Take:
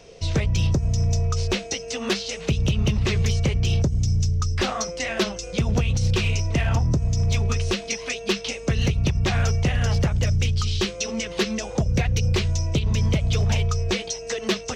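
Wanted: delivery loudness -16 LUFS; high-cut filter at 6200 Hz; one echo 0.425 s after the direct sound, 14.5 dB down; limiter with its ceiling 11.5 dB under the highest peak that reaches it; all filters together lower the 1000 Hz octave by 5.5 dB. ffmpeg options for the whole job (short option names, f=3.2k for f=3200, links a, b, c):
-af "lowpass=6.2k,equalizer=f=1k:t=o:g=-8,alimiter=level_in=0.5dB:limit=-24dB:level=0:latency=1,volume=-0.5dB,aecho=1:1:425:0.188,volume=16dB"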